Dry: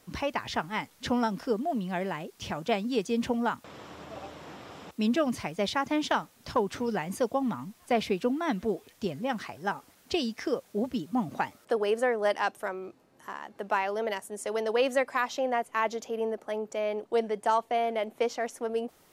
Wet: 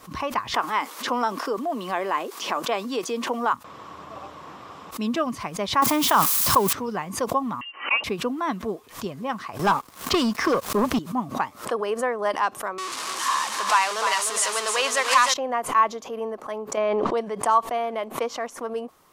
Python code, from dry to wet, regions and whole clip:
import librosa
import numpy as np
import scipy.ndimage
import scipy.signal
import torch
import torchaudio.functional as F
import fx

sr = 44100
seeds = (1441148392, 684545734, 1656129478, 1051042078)

y = fx.chain(x, sr, fx.highpass(hz=290.0, slope=24),
    fx.env_flatten(amount_pct=50), at=(0.54, 3.53))
y = fx.chain(y, sr, fx.crossing_spikes(level_db=-27.5),
    fx.highpass(hz=57.0, slope=12),
    fx.env_flatten(amount_pct=100), at=(5.82, 6.73))
y = fx.chain(y, sr, fx.freq_invert(carrier_hz=3000),
    fx.highpass(hz=260.0, slope=24),
    fx.comb(ms=3.6, depth=0.38), at=(7.61, 8.04))
y = fx.chain(y, sr, fx.leveller(passes=3),
    fx.band_squash(depth_pct=40), at=(9.59, 10.99))
y = fx.chain(y, sr, fx.zero_step(step_db=-30.0),
    fx.weighting(curve='ITU-R 468'),
    fx.echo_single(ms=304, db=-6.0), at=(12.78, 15.34))
y = fx.chain(y, sr, fx.air_absorb(metres=120.0),
    fx.env_flatten(amount_pct=100), at=(16.77, 17.17))
y = fx.peak_eq(y, sr, hz=1100.0, db=13.5, octaves=0.37)
y = fx.pre_swell(y, sr, db_per_s=150.0)